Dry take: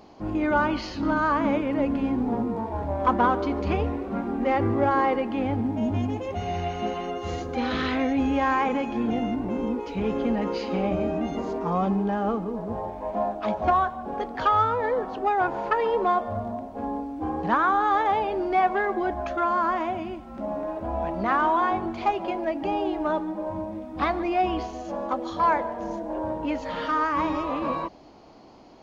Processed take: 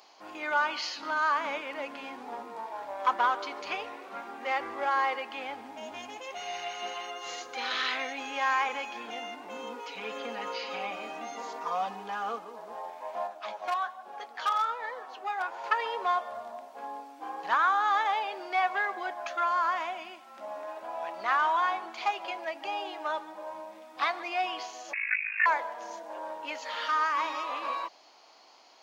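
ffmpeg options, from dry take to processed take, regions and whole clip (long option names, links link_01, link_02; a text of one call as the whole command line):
ffmpeg -i in.wav -filter_complex "[0:a]asettb=1/sr,asplit=3[link_01][link_02][link_03];[link_01]atrim=end=9.494[link_04];[link_02]atrim=start=9.49:end=12.39,asetpts=PTS-STARTPTS,afade=type=in:duration=0.004:curve=qsin,afade=type=out:start_time=2.896:duration=0.004:curve=qsin,acrossover=split=3500[link_05][link_06];[link_06]acompressor=threshold=-54dB:ratio=4:attack=1:release=60[link_07];[link_05][link_07]amix=inputs=2:normalize=0,aecho=1:1:4.1:0.7,atrim=end_sample=127890[link_08];[link_03]atrim=start=12.386[link_09];[link_04][link_08]acrossfade=duration=0.004:curve1=hsin:curve2=qsin[link_10];[link_10][link_09]acrossfade=duration=0.004:curve1=qsin:curve2=hsin,asettb=1/sr,asplit=3[link_11][link_12][link_13];[link_11]atrim=end=13.274[link_14];[link_12]atrim=start=13.27:end=15.64,asetpts=PTS-STARTPTS,afade=type=in:duration=0.004:curve=qsin,afade=type=out:start_time=2.366:duration=0.004:curve=qsin,flanger=delay=4.8:depth=7:regen=53:speed=1.2:shape=triangular,asoftclip=type=hard:threshold=-18dB[link_15];[link_13]atrim=start=15.636[link_16];[link_14][link_15]acrossfade=duration=0.004:curve1=hsin:curve2=qsin[link_17];[link_17][link_16]acrossfade=duration=0.004:curve1=qsin:curve2=hsin,asettb=1/sr,asplit=3[link_18][link_19][link_20];[link_18]atrim=end=24.934[link_21];[link_19]atrim=start=24.93:end=25.46,asetpts=PTS-STARTPTS,afade=type=in:duration=0.004:curve=qsin,afade=type=out:start_time=0.526:duration=0.004:curve=qsin,lowpass=frequency=2400:width_type=q:width=0.5098,lowpass=frequency=2400:width_type=q:width=0.6013,lowpass=frequency=2400:width_type=q:width=0.9,lowpass=frequency=2400:width_type=q:width=2.563,afreqshift=-2800,aeval=exprs='val(0)*sin(2*PI*26*n/s)':channel_layout=same,equalizer=frequency=300:width_type=o:width=0.4:gain=-15[link_22];[link_20]atrim=start=25.456[link_23];[link_21][link_22]acrossfade=duration=0.004:curve1=hsin:curve2=qsin[link_24];[link_24][link_23]acrossfade=duration=0.004:curve1=qsin:curve2=hsin,highpass=830,highshelf=frequency=2200:gain=9.5,volume=-3.5dB" out.wav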